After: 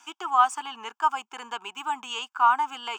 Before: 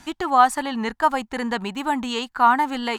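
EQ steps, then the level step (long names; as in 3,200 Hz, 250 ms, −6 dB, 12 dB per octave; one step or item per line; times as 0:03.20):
high-pass filter 440 Hz 24 dB per octave
phaser with its sweep stopped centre 2,800 Hz, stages 8
−2.0 dB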